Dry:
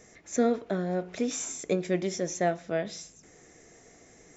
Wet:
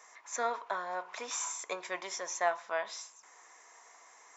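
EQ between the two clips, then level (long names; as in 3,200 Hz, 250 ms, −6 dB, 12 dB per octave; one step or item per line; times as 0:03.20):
high-pass with resonance 1,000 Hz, resonance Q 8.6
−2.0 dB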